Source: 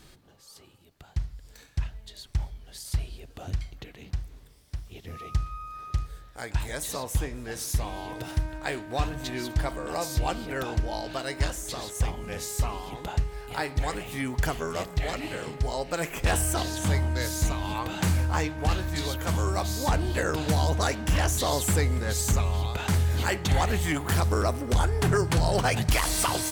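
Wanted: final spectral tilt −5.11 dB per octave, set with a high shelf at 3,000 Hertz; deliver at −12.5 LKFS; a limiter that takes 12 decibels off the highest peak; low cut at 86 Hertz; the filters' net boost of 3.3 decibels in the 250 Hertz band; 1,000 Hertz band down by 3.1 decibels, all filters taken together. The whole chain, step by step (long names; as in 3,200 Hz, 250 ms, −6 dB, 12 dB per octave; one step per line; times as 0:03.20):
high-pass filter 86 Hz
parametric band 250 Hz +5 dB
parametric band 1,000 Hz −4 dB
high-shelf EQ 3,000 Hz −5 dB
level +21.5 dB
brickwall limiter −2 dBFS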